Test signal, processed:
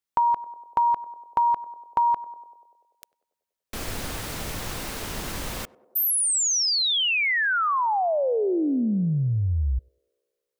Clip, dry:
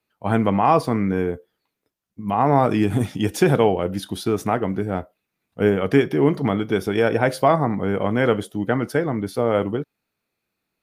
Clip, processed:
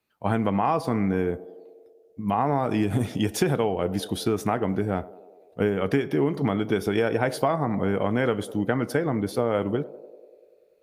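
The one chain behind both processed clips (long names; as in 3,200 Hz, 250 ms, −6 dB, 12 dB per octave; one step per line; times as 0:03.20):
feedback echo with a band-pass in the loop 97 ms, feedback 77%, band-pass 500 Hz, level −19 dB
downward compressor, threshold −19 dBFS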